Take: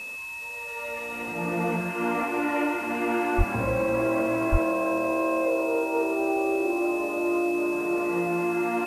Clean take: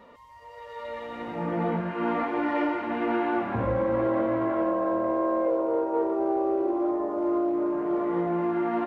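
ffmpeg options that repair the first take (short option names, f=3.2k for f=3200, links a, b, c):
-filter_complex "[0:a]bandreject=f=2.6k:w=30,asplit=3[a][b][c];[a]afade=t=out:st=3.37:d=0.02[d];[b]highpass=f=140:w=0.5412,highpass=f=140:w=1.3066,afade=t=in:st=3.37:d=0.02,afade=t=out:st=3.49:d=0.02[e];[c]afade=t=in:st=3.49:d=0.02[f];[d][e][f]amix=inputs=3:normalize=0,asplit=3[g][h][i];[g]afade=t=out:st=4.51:d=0.02[j];[h]highpass=f=140:w=0.5412,highpass=f=140:w=1.3066,afade=t=in:st=4.51:d=0.02,afade=t=out:st=4.63:d=0.02[k];[i]afade=t=in:st=4.63:d=0.02[l];[j][k][l]amix=inputs=3:normalize=0,afwtdn=0.0035"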